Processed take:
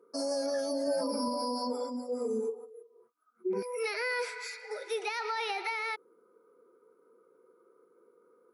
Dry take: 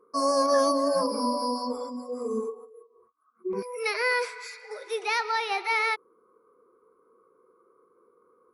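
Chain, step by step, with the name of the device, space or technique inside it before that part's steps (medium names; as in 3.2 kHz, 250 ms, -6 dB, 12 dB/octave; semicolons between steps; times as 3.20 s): PA system with an anti-feedback notch (high-pass 170 Hz 12 dB/octave; Butterworth band-stop 1.1 kHz, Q 4.9; peak limiter -25 dBFS, peak gain reduction 11 dB); 0.87–1.28 s: comb 3.3 ms, depth 51%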